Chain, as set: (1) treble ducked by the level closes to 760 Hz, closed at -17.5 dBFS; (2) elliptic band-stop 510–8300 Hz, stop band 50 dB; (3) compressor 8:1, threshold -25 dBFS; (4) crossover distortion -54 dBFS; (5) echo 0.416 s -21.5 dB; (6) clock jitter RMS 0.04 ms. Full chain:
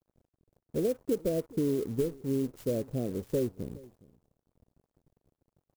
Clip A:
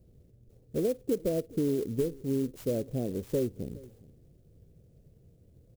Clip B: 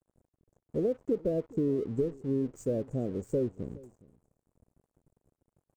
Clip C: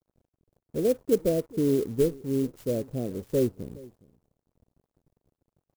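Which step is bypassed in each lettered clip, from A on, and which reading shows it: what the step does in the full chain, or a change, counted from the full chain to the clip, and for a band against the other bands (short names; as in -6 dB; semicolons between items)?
4, distortion -24 dB; 6, 8 kHz band -7.5 dB; 3, mean gain reduction 2.0 dB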